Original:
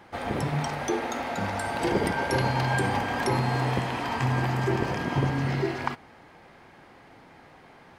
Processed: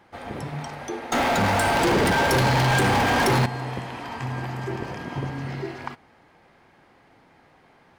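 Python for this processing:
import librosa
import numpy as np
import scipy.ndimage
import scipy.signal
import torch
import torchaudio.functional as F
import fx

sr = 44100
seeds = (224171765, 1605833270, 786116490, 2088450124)

y = fx.leveller(x, sr, passes=5, at=(1.12, 3.46))
y = y * 10.0 ** (-4.5 / 20.0)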